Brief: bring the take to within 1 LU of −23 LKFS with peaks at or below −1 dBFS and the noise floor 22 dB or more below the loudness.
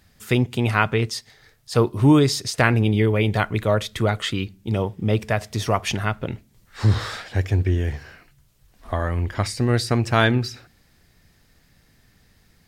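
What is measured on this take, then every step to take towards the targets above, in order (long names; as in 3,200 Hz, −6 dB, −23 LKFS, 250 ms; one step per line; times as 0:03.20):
integrated loudness −22.0 LKFS; sample peak −2.0 dBFS; target loudness −23.0 LKFS
→ level −1 dB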